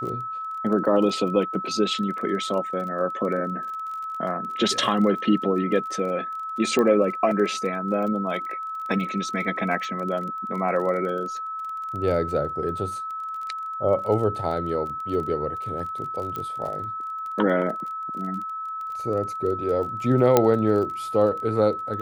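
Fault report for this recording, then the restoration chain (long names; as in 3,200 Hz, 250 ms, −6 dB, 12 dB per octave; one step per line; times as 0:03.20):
surface crackle 24 per second −32 dBFS
whistle 1,300 Hz −29 dBFS
0:06.79: click −12 dBFS
0:16.36: click −18 dBFS
0:20.37: click −3 dBFS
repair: click removal
notch filter 1,300 Hz, Q 30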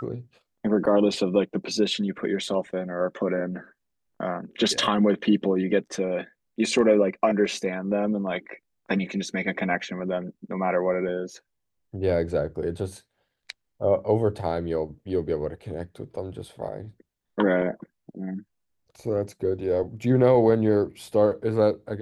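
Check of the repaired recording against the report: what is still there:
0:06.79: click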